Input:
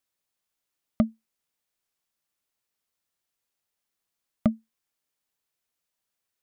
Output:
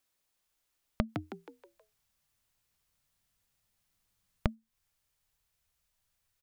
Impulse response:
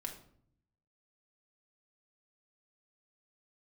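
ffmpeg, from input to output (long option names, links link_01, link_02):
-filter_complex "[0:a]asubboost=boost=11.5:cutoff=85,acompressor=threshold=-31dB:ratio=6,asplit=3[link_01][link_02][link_03];[link_01]afade=type=out:start_time=1.08:duration=0.02[link_04];[link_02]asplit=6[link_05][link_06][link_07][link_08][link_09][link_10];[link_06]adelay=159,afreqshift=85,volume=-6dB[link_11];[link_07]adelay=318,afreqshift=170,volume=-13.7dB[link_12];[link_08]adelay=477,afreqshift=255,volume=-21.5dB[link_13];[link_09]adelay=636,afreqshift=340,volume=-29.2dB[link_14];[link_10]adelay=795,afreqshift=425,volume=-37dB[link_15];[link_05][link_11][link_12][link_13][link_14][link_15]amix=inputs=6:normalize=0,afade=type=in:start_time=1.08:duration=0.02,afade=type=out:start_time=4.54:duration=0.02[link_16];[link_03]afade=type=in:start_time=4.54:duration=0.02[link_17];[link_04][link_16][link_17]amix=inputs=3:normalize=0,volume=3.5dB"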